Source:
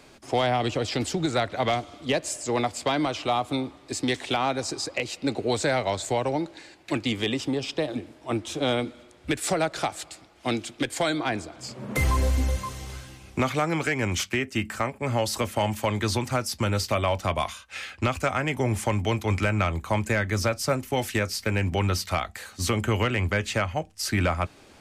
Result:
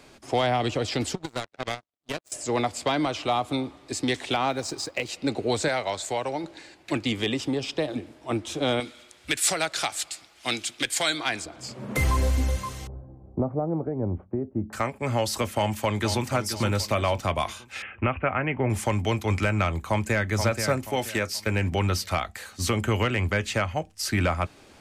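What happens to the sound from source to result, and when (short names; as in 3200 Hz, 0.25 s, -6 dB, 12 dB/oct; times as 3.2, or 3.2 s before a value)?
1.15–2.32 power-law curve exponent 3
4.5–5.09 G.711 law mismatch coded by A
5.68–6.44 low shelf 370 Hz -9.5 dB
8.8–11.46 tilt shelf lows -8 dB, about 1200 Hz
12.87–14.73 inverse Chebyshev low-pass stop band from 4300 Hz, stop band 80 dB
15.52–16.29 echo throw 0.48 s, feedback 40%, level -9.5 dB
17.82–18.7 steep low-pass 2900 Hz 72 dB/oct
19.88–20.3 echo throw 0.48 s, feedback 35%, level -6.5 dB
20.9–21.47 low shelf 160 Hz -7.5 dB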